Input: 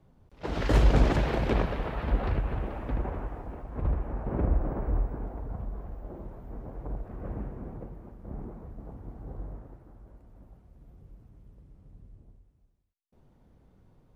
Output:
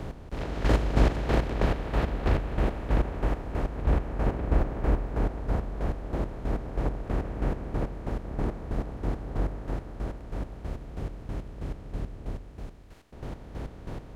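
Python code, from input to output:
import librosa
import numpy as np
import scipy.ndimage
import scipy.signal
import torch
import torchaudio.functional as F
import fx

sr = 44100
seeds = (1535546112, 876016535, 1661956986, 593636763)

y = fx.bin_compress(x, sr, power=0.4)
y = fx.chopper(y, sr, hz=3.1, depth_pct=65, duty_pct=35)
y = F.gain(torch.from_numpy(y), -1.5).numpy()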